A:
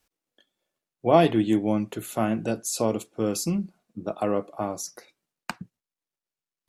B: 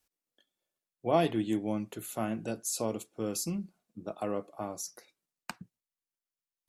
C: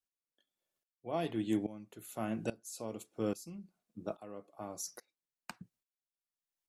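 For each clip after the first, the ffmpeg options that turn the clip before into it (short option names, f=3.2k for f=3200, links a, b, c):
-af "highshelf=f=5.5k:g=6.5,volume=-8.5dB"
-af "aeval=exprs='val(0)*pow(10,-19*if(lt(mod(-1.2*n/s,1),2*abs(-1.2)/1000),1-mod(-1.2*n/s,1)/(2*abs(-1.2)/1000),(mod(-1.2*n/s,1)-2*abs(-1.2)/1000)/(1-2*abs(-1.2)/1000))/20)':c=same,volume=1.5dB"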